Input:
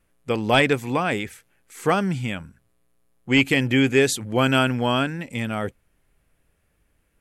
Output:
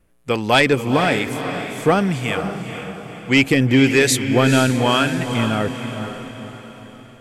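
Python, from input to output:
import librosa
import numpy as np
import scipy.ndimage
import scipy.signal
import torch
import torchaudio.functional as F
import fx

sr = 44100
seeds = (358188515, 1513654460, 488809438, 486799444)

p1 = fx.harmonic_tremolo(x, sr, hz=1.1, depth_pct=50, crossover_hz=770.0)
p2 = 10.0 ** (-12.0 / 20.0) * np.tanh(p1 / 10.0 ** (-12.0 / 20.0))
p3 = p2 + fx.echo_diffused(p2, sr, ms=480, feedback_pct=47, wet_db=-8, dry=0)
y = p3 * librosa.db_to_amplitude(7.5)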